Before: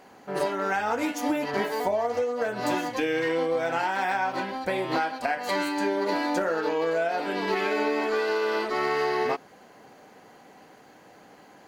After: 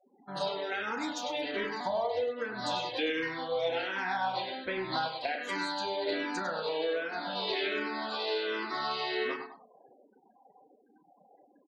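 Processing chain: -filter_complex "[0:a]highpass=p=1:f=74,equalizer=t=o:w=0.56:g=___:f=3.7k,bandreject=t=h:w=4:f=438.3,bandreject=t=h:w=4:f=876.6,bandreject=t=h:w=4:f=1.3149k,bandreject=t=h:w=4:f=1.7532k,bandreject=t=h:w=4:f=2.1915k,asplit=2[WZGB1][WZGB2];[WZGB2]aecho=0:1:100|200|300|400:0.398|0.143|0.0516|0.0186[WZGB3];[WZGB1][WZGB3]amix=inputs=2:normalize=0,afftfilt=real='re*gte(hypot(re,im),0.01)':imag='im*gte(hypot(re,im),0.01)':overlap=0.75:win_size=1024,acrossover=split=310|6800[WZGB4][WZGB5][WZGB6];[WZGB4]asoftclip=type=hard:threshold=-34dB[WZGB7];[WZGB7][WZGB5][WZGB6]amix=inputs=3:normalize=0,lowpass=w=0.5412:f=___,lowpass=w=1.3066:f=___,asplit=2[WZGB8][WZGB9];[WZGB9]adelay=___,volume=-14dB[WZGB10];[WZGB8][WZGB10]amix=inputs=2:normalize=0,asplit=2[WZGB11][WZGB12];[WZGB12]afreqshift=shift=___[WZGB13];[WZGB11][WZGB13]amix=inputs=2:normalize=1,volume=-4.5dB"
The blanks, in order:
13.5, 11k, 11k, 32, -1.3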